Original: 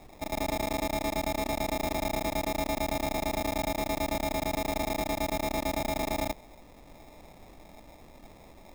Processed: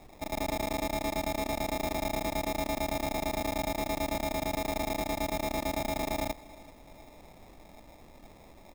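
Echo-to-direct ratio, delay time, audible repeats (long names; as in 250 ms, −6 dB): −20.0 dB, 383 ms, 2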